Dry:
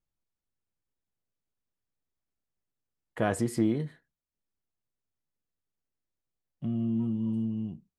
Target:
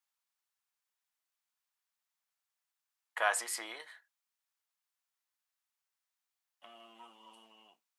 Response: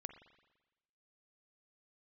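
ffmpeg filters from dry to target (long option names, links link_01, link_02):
-af "highpass=frequency=850:width=0.5412,highpass=frequency=850:width=1.3066,volume=5.5dB"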